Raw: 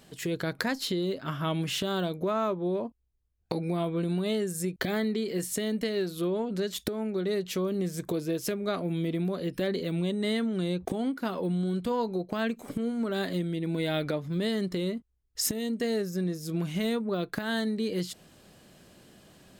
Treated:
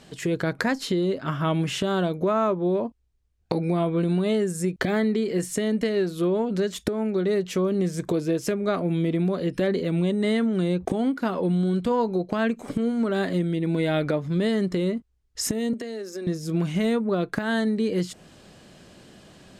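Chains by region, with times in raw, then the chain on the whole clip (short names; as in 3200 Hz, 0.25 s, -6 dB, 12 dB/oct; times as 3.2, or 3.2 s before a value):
15.73–16.27 steep high-pass 220 Hz 72 dB/oct + compressor 12:1, threshold -35 dBFS
whole clip: LPF 8100 Hz 12 dB/oct; dynamic EQ 4000 Hz, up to -7 dB, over -51 dBFS, Q 1.2; gain +6 dB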